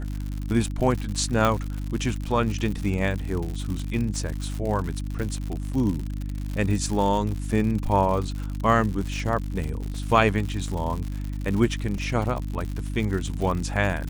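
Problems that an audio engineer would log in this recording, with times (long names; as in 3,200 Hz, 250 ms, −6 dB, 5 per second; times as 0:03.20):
surface crackle 110 per second −29 dBFS
mains hum 50 Hz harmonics 6 −30 dBFS
0:01.45: click −9 dBFS
0:09.94: drop-out 3.6 ms
0:11.98: drop-out 2.8 ms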